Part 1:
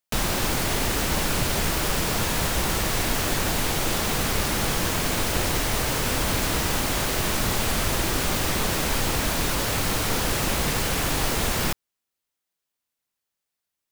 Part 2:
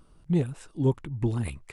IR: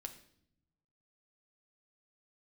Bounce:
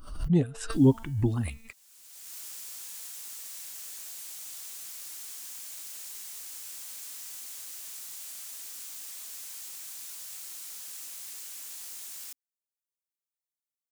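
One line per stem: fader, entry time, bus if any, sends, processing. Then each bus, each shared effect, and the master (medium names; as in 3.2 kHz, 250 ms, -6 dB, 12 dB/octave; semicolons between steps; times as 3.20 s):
-16.0 dB, 0.60 s, no send, differentiator; peaking EQ 7.4 kHz +5 dB 0.98 oct; auto duck -22 dB, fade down 1.15 s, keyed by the second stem
+1.5 dB, 0.00 s, no send, expander on every frequency bin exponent 1.5; de-hum 225.3 Hz, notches 21; swell ahead of each attack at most 78 dB/s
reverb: none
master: peaking EQ 270 Hz +7 dB 0.22 oct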